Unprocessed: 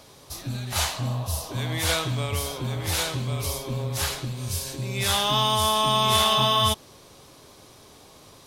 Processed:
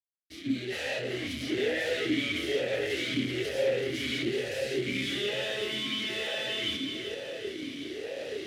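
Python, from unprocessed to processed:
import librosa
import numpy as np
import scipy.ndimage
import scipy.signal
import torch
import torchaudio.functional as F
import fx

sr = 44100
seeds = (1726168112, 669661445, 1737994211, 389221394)

y = fx.fade_in_head(x, sr, length_s=1.43)
y = fx.chorus_voices(y, sr, voices=2, hz=0.3, base_ms=28, depth_ms=1.9, mix_pct=45)
y = fx.fuzz(y, sr, gain_db=47.0, gate_db=-56.0)
y = fx.echo_feedback(y, sr, ms=379, feedback_pct=52, wet_db=-7.5)
y = fx.vowel_sweep(y, sr, vowels='e-i', hz=1.1)
y = y * librosa.db_to_amplitude(-3.0)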